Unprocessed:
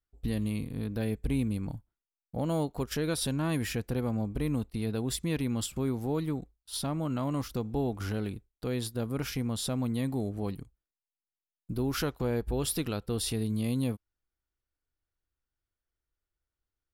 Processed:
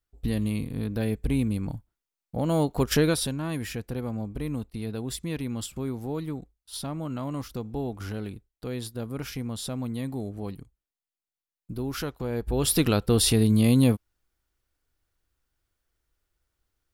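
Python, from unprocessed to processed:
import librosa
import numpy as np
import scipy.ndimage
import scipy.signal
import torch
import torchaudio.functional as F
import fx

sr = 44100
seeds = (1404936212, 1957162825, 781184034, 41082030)

y = fx.gain(x, sr, db=fx.line((2.41, 4.0), (2.99, 10.5), (3.36, -1.0), (12.28, -1.0), (12.84, 10.5)))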